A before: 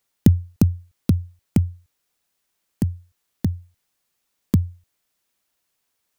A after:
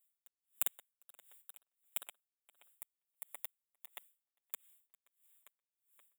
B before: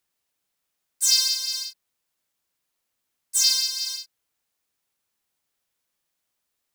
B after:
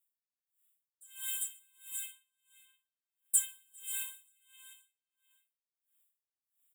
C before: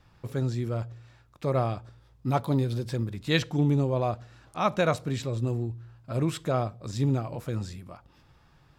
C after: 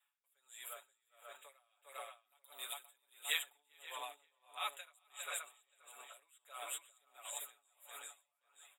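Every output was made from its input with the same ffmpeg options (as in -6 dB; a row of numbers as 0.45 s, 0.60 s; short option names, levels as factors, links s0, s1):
-filter_complex "[0:a]agate=range=0.398:threshold=0.00447:ratio=16:detection=peak,highpass=f=620:w=0.5412,highpass=f=620:w=1.3066,aecho=1:1:7:0.88,acrossover=split=2200|7500[s0][s1][s2];[s0]acompressor=threshold=0.0224:ratio=4[s3];[s1]acompressor=threshold=0.0126:ratio=4[s4];[s2]acompressor=threshold=0.00631:ratio=4[s5];[s3][s4][s5]amix=inputs=3:normalize=0,asuperstop=centerf=5200:order=20:qfactor=1.6,aderivative,asplit=2[s6][s7];[s7]aecho=0:1:401:0.596[s8];[s6][s8]amix=inputs=2:normalize=0,dynaudnorm=f=130:g=5:m=1.78,asplit=2[s9][s10];[s10]adelay=526,lowpass=f=3500:p=1,volume=0.596,asplit=2[s11][s12];[s12]adelay=526,lowpass=f=3500:p=1,volume=0.17,asplit=2[s13][s14];[s14]adelay=526,lowpass=f=3500:p=1,volume=0.17[s15];[s11][s13][s15]amix=inputs=3:normalize=0[s16];[s9][s16]amix=inputs=2:normalize=0,aeval=exprs='val(0)*pow(10,-33*(0.5-0.5*cos(2*PI*1.5*n/s))/20)':c=same,volume=1.33"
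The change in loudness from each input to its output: -20.0 LU, -14.0 LU, -16.5 LU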